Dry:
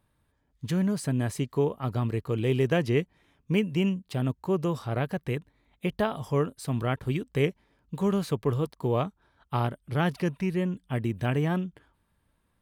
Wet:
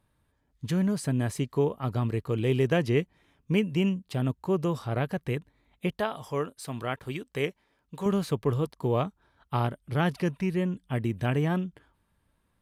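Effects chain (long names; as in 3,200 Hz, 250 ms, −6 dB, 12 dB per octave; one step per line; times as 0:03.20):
0:05.91–0:08.06: low-shelf EQ 300 Hz −10.5 dB
Ogg Vorbis 128 kbit/s 32,000 Hz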